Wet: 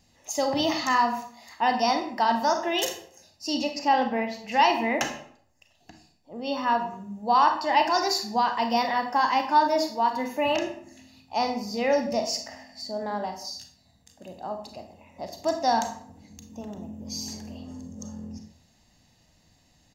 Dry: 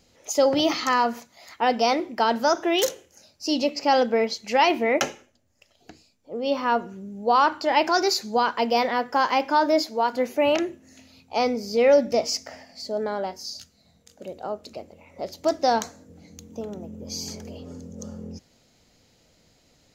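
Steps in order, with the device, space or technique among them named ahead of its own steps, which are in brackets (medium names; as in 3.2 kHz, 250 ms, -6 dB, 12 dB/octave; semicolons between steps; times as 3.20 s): microphone above a desk (comb 1.1 ms, depth 59%; reverberation RT60 0.60 s, pre-delay 29 ms, DRR 5.5 dB); 3.88–4.52 s: high-order bell 6.9 kHz -10 dB; trim -4 dB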